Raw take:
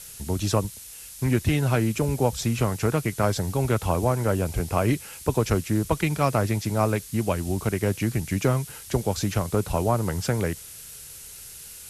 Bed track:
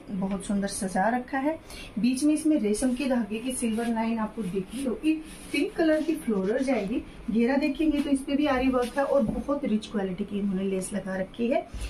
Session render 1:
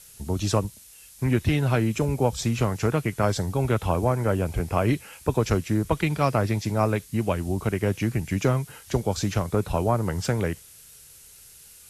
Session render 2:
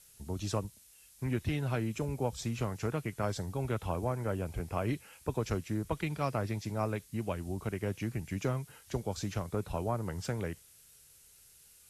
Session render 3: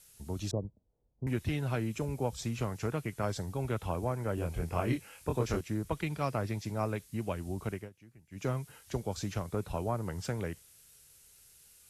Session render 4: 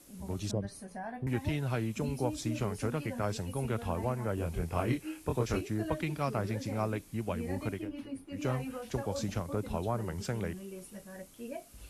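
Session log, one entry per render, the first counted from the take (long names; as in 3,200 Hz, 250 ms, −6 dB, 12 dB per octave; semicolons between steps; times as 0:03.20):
noise reduction from a noise print 7 dB
level −10.5 dB
0:00.51–0:01.27: inverse Chebyshev low-pass filter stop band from 2,300 Hz, stop band 60 dB; 0:04.35–0:05.61: double-tracking delay 24 ms −2.5 dB; 0:07.71–0:08.49: duck −21.5 dB, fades 0.19 s
mix in bed track −16.5 dB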